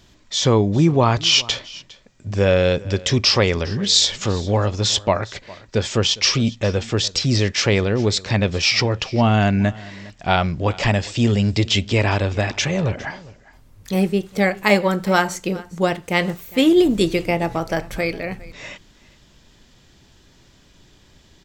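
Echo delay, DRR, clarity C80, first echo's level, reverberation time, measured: 407 ms, no reverb, no reverb, -21.0 dB, no reverb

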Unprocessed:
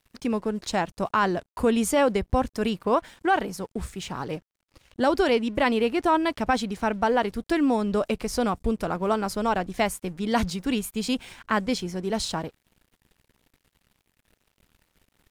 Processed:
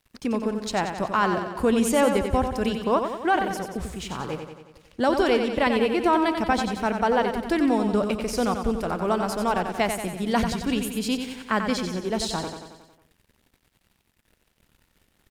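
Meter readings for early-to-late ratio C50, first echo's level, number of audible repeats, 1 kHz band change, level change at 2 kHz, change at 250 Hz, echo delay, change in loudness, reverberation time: no reverb, -7.0 dB, 6, +1.0 dB, +1.0 dB, +1.5 dB, 91 ms, +1.0 dB, no reverb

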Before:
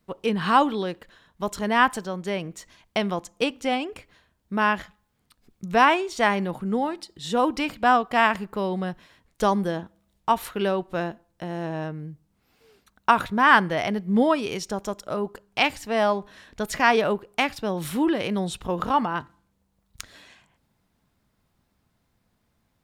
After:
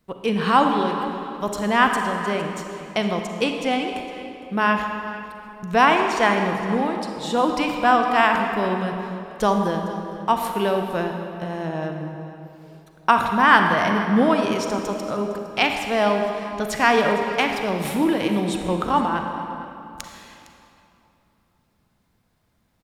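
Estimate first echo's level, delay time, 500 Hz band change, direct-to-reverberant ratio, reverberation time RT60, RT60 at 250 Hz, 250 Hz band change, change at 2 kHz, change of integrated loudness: -17.0 dB, 459 ms, +3.0 dB, 3.5 dB, 3.0 s, 3.0 s, +3.5 dB, +3.0 dB, +3.0 dB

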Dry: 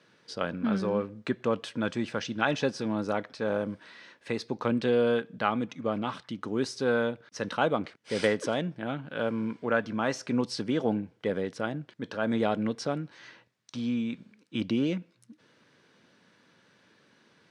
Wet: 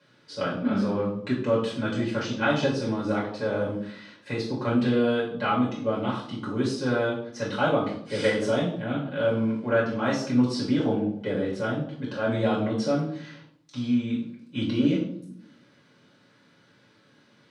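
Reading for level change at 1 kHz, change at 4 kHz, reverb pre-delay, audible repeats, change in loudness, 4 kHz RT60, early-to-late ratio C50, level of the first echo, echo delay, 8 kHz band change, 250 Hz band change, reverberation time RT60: +2.5 dB, +3.0 dB, 4 ms, no echo, +3.5 dB, 0.50 s, 5.0 dB, no echo, no echo, +0.5 dB, +5.0 dB, 0.65 s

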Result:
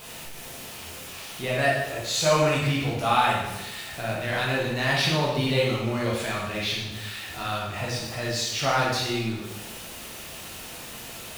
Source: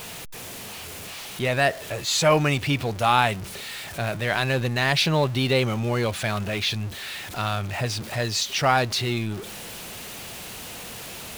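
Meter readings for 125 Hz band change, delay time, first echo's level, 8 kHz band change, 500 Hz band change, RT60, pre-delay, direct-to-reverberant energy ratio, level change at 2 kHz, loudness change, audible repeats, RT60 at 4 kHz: -3.0 dB, no echo, no echo, -2.0 dB, -1.0 dB, 1.0 s, 6 ms, -5.0 dB, -1.5 dB, -1.5 dB, no echo, 0.90 s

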